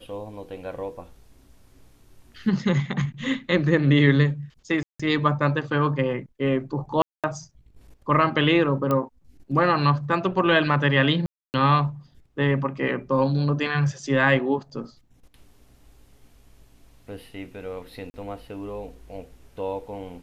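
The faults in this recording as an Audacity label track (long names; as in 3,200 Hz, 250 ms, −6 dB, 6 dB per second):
4.830000	5.000000	drop-out 165 ms
7.020000	7.240000	drop-out 217 ms
8.910000	8.910000	click −12 dBFS
11.260000	11.540000	drop-out 279 ms
18.100000	18.140000	drop-out 40 ms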